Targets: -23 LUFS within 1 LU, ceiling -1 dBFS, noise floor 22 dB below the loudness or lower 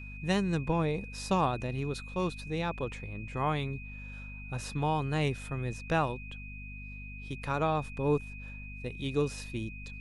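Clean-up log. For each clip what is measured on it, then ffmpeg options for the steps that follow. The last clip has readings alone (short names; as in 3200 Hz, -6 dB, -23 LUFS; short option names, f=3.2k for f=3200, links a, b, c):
hum 50 Hz; harmonics up to 250 Hz; hum level -42 dBFS; steady tone 2500 Hz; tone level -46 dBFS; loudness -33.0 LUFS; peak -15.0 dBFS; loudness target -23.0 LUFS
-> -af "bandreject=f=50:t=h:w=6,bandreject=f=100:t=h:w=6,bandreject=f=150:t=h:w=6,bandreject=f=200:t=h:w=6,bandreject=f=250:t=h:w=6"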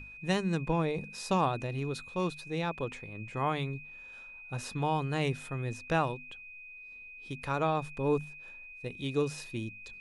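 hum none; steady tone 2500 Hz; tone level -46 dBFS
-> -af "bandreject=f=2.5k:w=30"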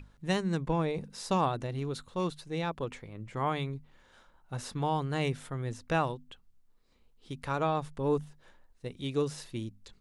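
steady tone none; loudness -33.5 LUFS; peak -15.0 dBFS; loudness target -23.0 LUFS
-> -af "volume=10.5dB"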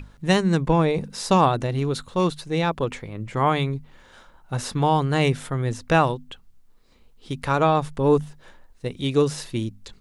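loudness -23.0 LUFS; peak -4.5 dBFS; noise floor -54 dBFS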